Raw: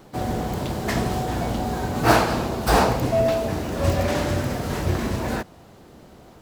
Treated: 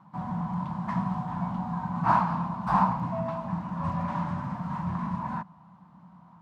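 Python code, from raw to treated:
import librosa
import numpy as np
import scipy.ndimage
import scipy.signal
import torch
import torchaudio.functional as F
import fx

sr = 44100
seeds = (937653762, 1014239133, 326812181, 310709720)

y = fx.double_bandpass(x, sr, hz=420.0, octaves=2.5)
y = F.gain(torch.from_numpy(y), 5.0).numpy()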